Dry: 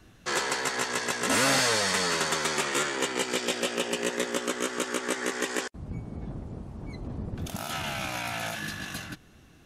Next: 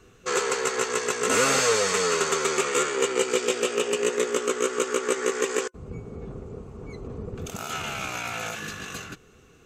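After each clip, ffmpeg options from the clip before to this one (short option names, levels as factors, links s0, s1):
-af "superequalizer=7b=3.55:10b=2:12b=1.58:15b=2:16b=0.631,volume=0.841"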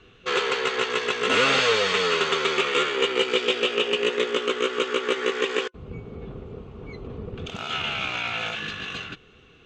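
-af "lowpass=f=3300:t=q:w=2.9"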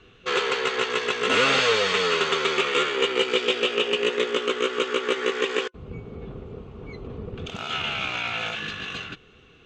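-af anull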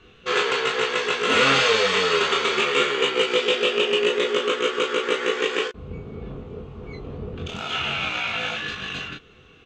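-af "aecho=1:1:22|36:0.596|0.531"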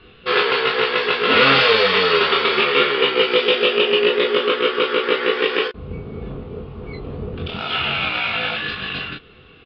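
-af "aresample=11025,aresample=44100,volume=1.68"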